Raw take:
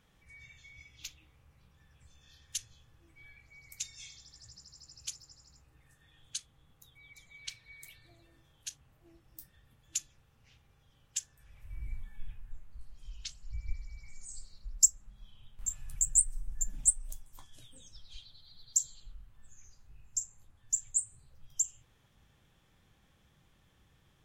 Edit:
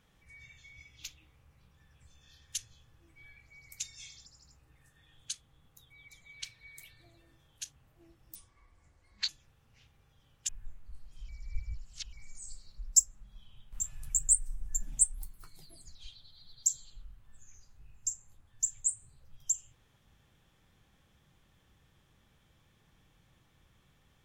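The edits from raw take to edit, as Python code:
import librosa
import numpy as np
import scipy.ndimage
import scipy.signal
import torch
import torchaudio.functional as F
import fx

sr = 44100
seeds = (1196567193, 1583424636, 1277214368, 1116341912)

y = fx.edit(x, sr, fx.cut(start_s=4.26, length_s=1.05),
    fx.speed_span(start_s=9.4, length_s=0.59, speed=0.63),
    fx.cut(start_s=11.19, length_s=1.16),
    fx.reverse_span(start_s=13.15, length_s=0.84),
    fx.speed_span(start_s=17.0, length_s=1.05, speed=1.29), tone=tone)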